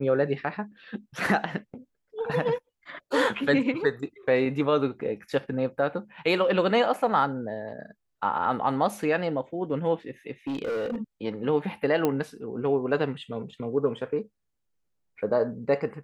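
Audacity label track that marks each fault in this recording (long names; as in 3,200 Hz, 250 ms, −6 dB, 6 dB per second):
10.470000	11.020000	clipping −26.5 dBFS
12.050000	12.050000	click −12 dBFS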